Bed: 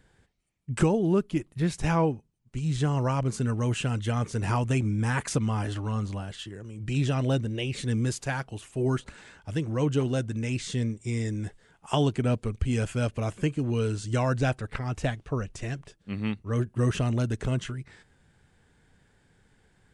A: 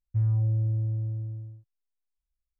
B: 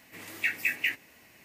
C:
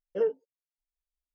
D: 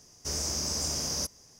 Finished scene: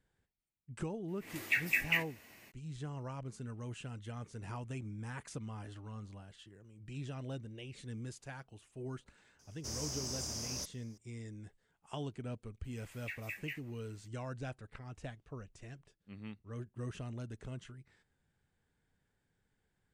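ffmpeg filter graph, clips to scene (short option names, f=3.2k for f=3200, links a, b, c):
-filter_complex "[2:a]asplit=2[a][b];[0:a]volume=-17dB[c];[a]dynaudnorm=f=140:g=3:m=13.5dB[d];[b]highpass=600[e];[d]atrim=end=1.44,asetpts=PTS-STARTPTS,volume=-14.5dB,afade=t=in:d=0.004:c=hsin,afade=t=out:st=1.436:d=0.004:c=hsin,adelay=1080[f];[4:a]atrim=end=1.59,asetpts=PTS-STARTPTS,volume=-9.5dB,afade=t=in:d=0.004:c=hsin,afade=t=out:st=1.586:d=0.004:c=hsin,adelay=9390[g];[e]atrim=end=1.44,asetpts=PTS-STARTPTS,volume=-15.5dB,afade=t=in:d=0.004:c=hsin,afade=t=out:st=1.436:d=0.004:c=hsin,adelay=12640[h];[c][f][g][h]amix=inputs=4:normalize=0"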